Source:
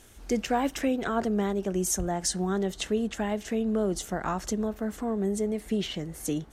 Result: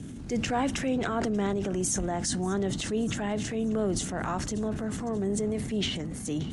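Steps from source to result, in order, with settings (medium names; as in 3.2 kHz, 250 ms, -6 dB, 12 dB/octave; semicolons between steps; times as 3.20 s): band noise 78–280 Hz -39 dBFS; Chebyshev low-pass 11 kHz, order 8; on a send: feedback echo behind a high-pass 583 ms, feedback 52%, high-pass 1.8 kHz, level -19 dB; on the sum: transient shaper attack -5 dB, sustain +7 dB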